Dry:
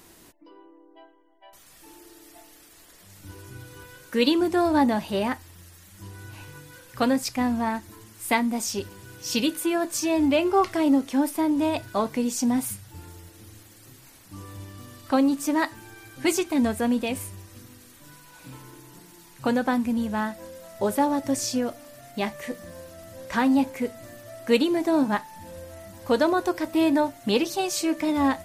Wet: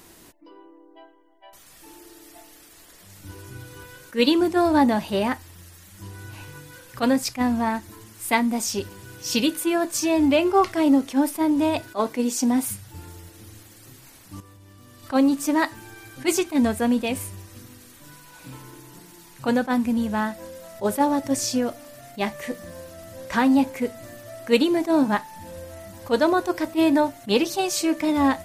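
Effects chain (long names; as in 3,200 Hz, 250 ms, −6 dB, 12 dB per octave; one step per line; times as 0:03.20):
0:11.80–0:12.68: low shelf with overshoot 210 Hz −7 dB, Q 1.5
0:14.40–0:15.03: output level in coarse steps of 17 dB
level that may rise only so fast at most 360 dB per second
level +2.5 dB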